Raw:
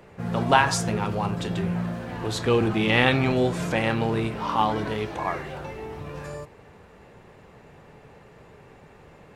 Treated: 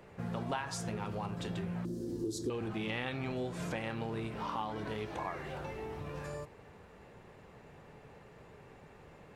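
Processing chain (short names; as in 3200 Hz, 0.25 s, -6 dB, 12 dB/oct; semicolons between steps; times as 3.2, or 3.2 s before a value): 1.85–2.5 EQ curve 200 Hz 0 dB, 350 Hz +15 dB, 680 Hz -17 dB, 2500 Hz -21 dB, 5200 Hz +7 dB; compressor 4:1, threshold -30 dBFS, peak gain reduction 14.5 dB; gain -5.5 dB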